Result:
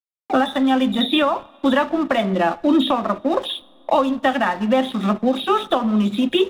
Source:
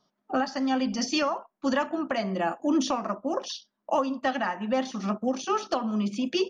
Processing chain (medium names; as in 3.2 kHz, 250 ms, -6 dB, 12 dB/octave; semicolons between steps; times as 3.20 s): knee-point frequency compression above 3.2 kHz 4:1; hysteresis with a dead band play -40 dBFS; two-slope reverb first 0.6 s, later 3.3 s, from -19 dB, DRR 20 dB; three bands compressed up and down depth 40%; trim +8.5 dB